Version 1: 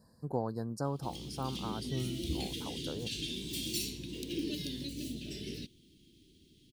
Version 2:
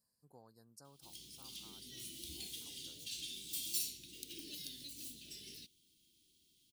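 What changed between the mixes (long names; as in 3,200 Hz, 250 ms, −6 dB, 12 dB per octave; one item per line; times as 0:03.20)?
speech −8.5 dB
master: add first-order pre-emphasis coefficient 0.9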